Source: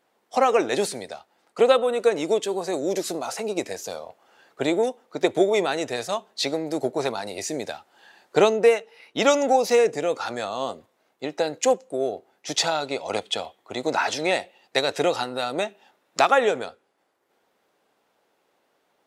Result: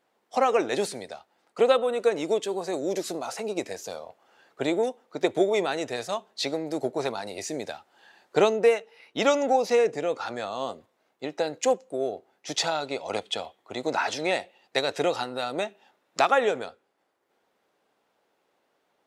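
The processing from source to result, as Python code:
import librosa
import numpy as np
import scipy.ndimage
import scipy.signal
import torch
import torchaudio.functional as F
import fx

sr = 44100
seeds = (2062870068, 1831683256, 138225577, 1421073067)

y = fx.high_shelf(x, sr, hz=8200.0, db=fx.steps((0.0, -4.0), (9.27, -11.5), (10.46, -4.5)))
y = y * librosa.db_to_amplitude(-3.0)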